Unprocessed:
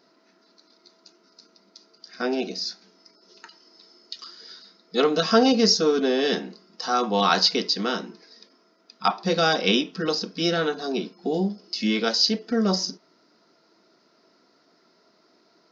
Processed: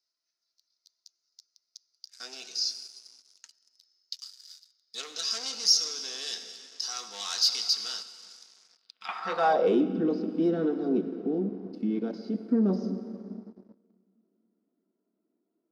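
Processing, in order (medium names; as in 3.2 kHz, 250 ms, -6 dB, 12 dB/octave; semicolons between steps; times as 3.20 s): 10.99–12.45 s: level held to a coarse grid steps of 14 dB; on a send at -10 dB: reverberation RT60 3.1 s, pre-delay 76 ms; on the sum: waveshaping leveller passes 3; band-pass sweep 6.3 kHz -> 280 Hz, 8.71–9.86 s; 8.02–9.09 s: compression 2.5:1, threshold -40 dBFS, peak gain reduction 13 dB; trim -6 dB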